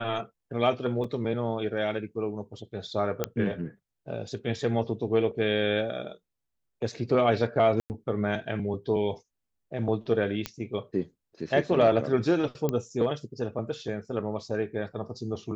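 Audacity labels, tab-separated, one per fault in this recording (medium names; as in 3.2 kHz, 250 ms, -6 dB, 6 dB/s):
1.040000	1.040000	dropout 4.3 ms
3.240000	3.240000	pop -12 dBFS
7.800000	7.900000	dropout 99 ms
10.460000	10.460000	pop -14 dBFS
12.690000	12.690000	pop -15 dBFS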